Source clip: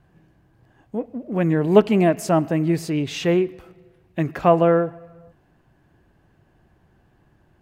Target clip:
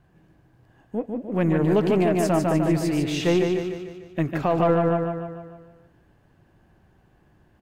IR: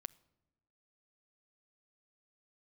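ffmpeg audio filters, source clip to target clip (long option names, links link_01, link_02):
-af "aecho=1:1:149|298|447|596|745|894|1043:0.596|0.31|0.161|0.0838|0.0436|0.0226|0.0118,aeval=exprs='0.891*(cos(1*acos(clip(val(0)/0.891,-1,1)))-cos(1*PI/2))+0.0251*(cos(8*acos(clip(val(0)/0.891,-1,1)))-cos(8*PI/2))':channel_layout=same,alimiter=limit=-10.5dB:level=0:latency=1:release=43,volume=-1.5dB"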